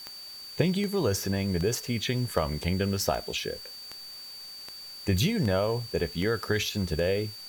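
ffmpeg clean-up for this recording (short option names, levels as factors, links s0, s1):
-af "adeclick=t=4,bandreject=f=4600:w=30,afwtdn=0.0028"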